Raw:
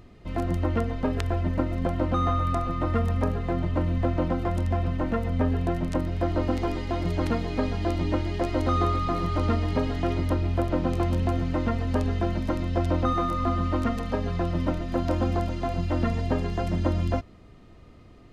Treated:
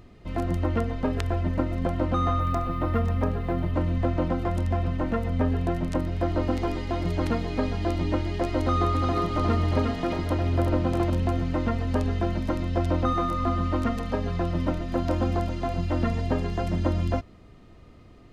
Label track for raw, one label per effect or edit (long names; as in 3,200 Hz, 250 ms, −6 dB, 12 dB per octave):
2.400000	3.740000	linearly interpolated sample-rate reduction rate divided by 3×
8.590000	11.100000	single-tap delay 356 ms −4.5 dB